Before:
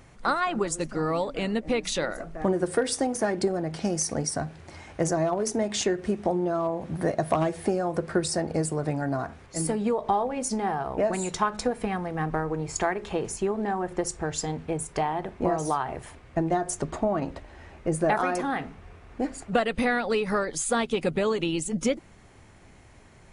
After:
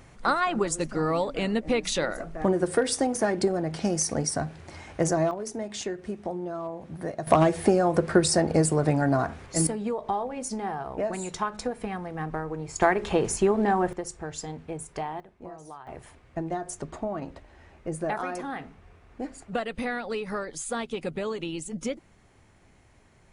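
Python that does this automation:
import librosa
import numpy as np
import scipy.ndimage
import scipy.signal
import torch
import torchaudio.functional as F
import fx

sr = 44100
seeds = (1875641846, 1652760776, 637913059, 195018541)

y = fx.gain(x, sr, db=fx.steps((0.0, 1.0), (5.31, -7.0), (7.27, 5.0), (9.67, -4.0), (12.82, 5.0), (13.93, -6.0), (15.2, -17.0), (15.87, -6.0)))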